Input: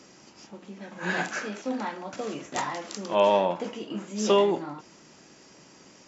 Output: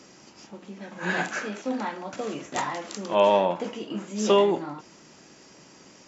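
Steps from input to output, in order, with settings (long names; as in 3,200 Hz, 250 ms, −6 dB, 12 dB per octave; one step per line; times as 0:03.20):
dynamic equaliser 5,200 Hz, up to −3 dB, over −51 dBFS
level +1.5 dB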